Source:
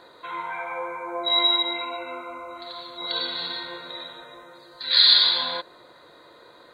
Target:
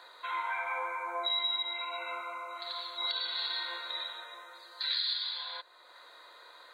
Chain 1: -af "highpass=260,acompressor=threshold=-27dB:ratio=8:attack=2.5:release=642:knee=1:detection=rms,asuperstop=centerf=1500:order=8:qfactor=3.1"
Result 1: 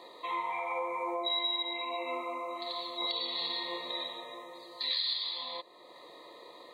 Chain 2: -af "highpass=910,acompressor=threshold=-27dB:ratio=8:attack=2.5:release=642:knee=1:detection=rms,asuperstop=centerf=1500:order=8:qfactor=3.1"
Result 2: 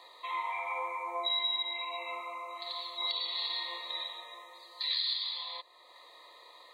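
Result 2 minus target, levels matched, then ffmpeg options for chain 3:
2,000 Hz band −3.0 dB
-af "highpass=910,acompressor=threshold=-27dB:ratio=8:attack=2.5:release=642:knee=1:detection=rms"

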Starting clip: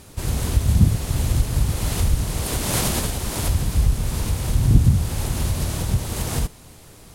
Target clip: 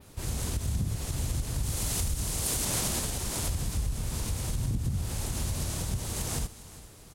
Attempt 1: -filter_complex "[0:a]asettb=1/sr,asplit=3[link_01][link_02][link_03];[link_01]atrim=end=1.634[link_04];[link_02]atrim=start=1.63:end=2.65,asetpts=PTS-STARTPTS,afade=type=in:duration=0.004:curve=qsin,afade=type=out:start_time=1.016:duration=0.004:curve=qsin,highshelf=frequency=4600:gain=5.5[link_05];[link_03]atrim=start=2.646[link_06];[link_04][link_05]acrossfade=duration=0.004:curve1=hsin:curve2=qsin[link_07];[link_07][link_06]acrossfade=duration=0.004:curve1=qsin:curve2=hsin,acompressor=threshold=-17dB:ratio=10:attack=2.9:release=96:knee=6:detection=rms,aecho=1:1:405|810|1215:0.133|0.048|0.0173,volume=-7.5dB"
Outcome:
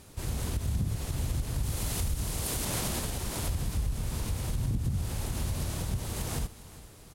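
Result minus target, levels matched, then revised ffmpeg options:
8,000 Hz band −3.5 dB
-filter_complex "[0:a]asettb=1/sr,asplit=3[link_01][link_02][link_03];[link_01]atrim=end=1.634[link_04];[link_02]atrim=start=1.63:end=2.65,asetpts=PTS-STARTPTS,afade=type=in:duration=0.004:curve=qsin,afade=type=out:start_time=1.016:duration=0.004:curve=qsin,highshelf=frequency=4600:gain=5.5[link_05];[link_03]atrim=start=2.646[link_06];[link_04][link_05]acrossfade=duration=0.004:curve1=hsin:curve2=qsin[link_07];[link_07][link_06]acrossfade=duration=0.004:curve1=qsin:curve2=hsin,acompressor=threshold=-17dB:ratio=10:attack=2.9:release=96:knee=6:detection=rms,adynamicequalizer=threshold=0.00794:dfrequency=7300:dqfactor=0.81:tfrequency=7300:tqfactor=0.81:attack=5:release=100:ratio=0.417:range=3:mode=boostabove:tftype=bell,aecho=1:1:405|810|1215:0.133|0.048|0.0173,volume=-7.5dB"

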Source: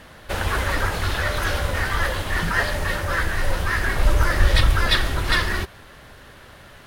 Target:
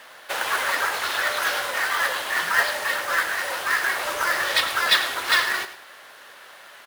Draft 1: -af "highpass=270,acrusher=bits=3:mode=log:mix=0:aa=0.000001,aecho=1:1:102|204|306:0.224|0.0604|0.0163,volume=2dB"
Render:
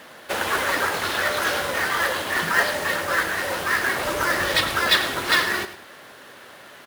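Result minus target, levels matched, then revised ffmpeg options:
250 Hz band +11.0 dB
-af "highpass=680,acrusher=bits=3:mode=log:mix=0:aa=0.000001,aecho=1:1:102|204|306:0.224|0.0604|0.0163,volume=2dB"

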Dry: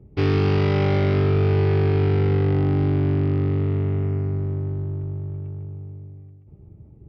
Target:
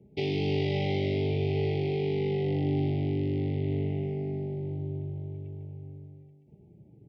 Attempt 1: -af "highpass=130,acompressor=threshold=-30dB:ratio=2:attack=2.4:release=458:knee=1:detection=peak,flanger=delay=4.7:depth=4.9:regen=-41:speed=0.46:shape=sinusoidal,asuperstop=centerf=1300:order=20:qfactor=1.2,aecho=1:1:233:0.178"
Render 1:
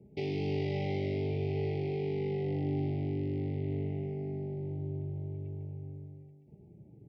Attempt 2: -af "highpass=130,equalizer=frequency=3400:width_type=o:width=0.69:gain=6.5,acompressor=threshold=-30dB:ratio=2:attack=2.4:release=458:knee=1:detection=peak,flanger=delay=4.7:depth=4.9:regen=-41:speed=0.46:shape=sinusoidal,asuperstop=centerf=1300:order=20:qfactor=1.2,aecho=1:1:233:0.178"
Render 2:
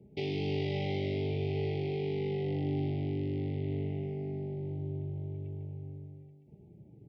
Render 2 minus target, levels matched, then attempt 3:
downward compressor: peak gain reduction +5 dB
-af "highpass=130,equalizer=frequency=3400:width_type=o:width=0.69:gain=6.5,acompressor=threshold=-20.5dB:ratio=2:attack=2.4:release=458:knee=1:detection=peak,flanger=delay=4.7:depth=4.9:regen=-41:speed=0.46:shape=sinusoidal,asuperstop=centerf=1300:order=20:qfactor=1.2,aecho=1:1:233:0.178"

